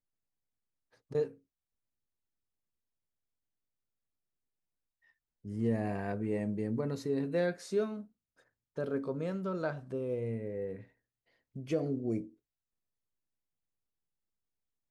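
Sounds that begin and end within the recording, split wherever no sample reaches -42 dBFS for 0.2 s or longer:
1.11–1.29 s
5.45–8.02 s
8.78–10.81 s
11.56–12.25 s

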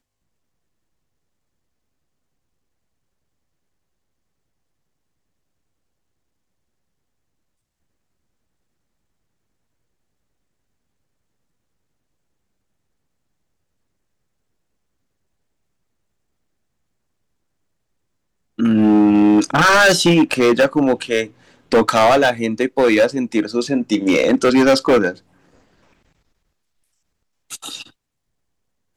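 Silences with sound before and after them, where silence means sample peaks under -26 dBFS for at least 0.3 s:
21.26–21.72 s
25.12–27.52 s

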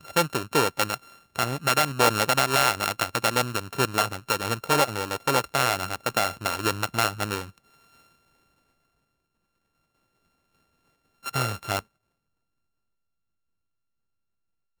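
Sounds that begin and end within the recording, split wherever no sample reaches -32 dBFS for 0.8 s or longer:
11.26–11.79 s

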